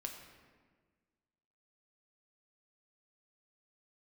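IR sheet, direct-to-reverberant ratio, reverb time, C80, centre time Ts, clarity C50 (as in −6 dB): 2.5 dB, 1.5 s, 7.0 dB, 37 ms, 6.0 dB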